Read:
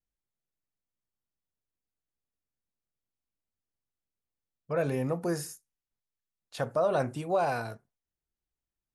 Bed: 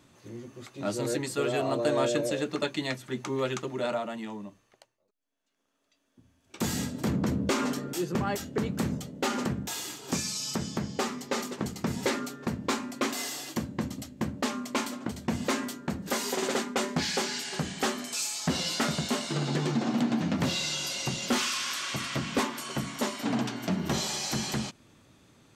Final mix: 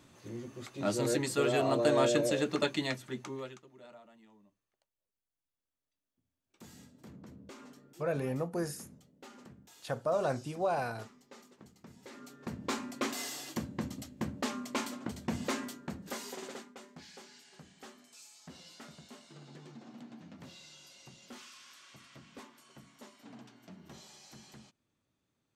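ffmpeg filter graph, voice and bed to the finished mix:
ffmpeg -i stem1.wav -i stem2.wav -filter_complex "[0:a]adelay=3300,volume=-4dB[link_01];[1:a]volume=18dB,afade=type=out:start_time=2.69:duration=0.91:silence=0.0707946,afade=type=in:start_time=12.09:duration=0.7:silence=0.11885,afade=type=out:start_time=15.37:duration=1.42:silence=0.125893[link_02];[link_01][link_02]amix=inputs=2:normalize=0" out.wav

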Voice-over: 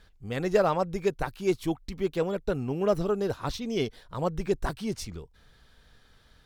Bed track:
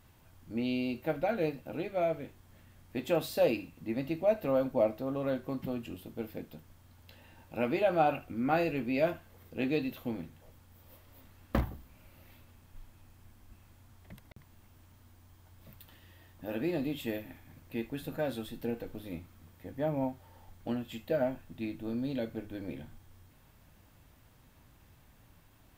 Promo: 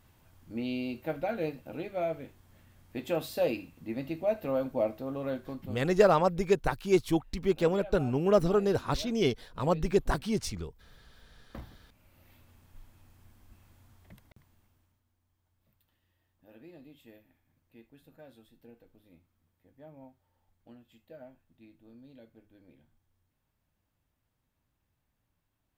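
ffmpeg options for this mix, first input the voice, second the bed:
ffmpeg -i stem1.wav -i stem2.wav -filter_complex "[0:a]adelay=5450,volume=1.5dB[link_01];[1:a]volume=14.5dB,afade=type=out:start_time=5.35:duration=0.64:silence=0.158489,afade=type=in:start_time=11.5:duration=1.05:silence=0.158489,afade=type=out:start_time=13.89:duration=1.14:silence=0.133352[link_02];[link_01][link_02]amix=inputs=2:normalize=0" out.wav

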